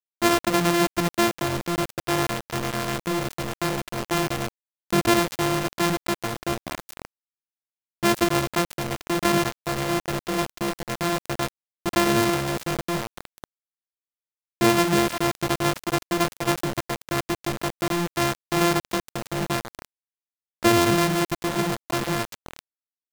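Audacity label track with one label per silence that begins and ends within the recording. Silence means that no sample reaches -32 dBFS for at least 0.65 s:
7.050000	8.030000	silence
13.440000	14.610000	silence
19.850000	20.630000	silence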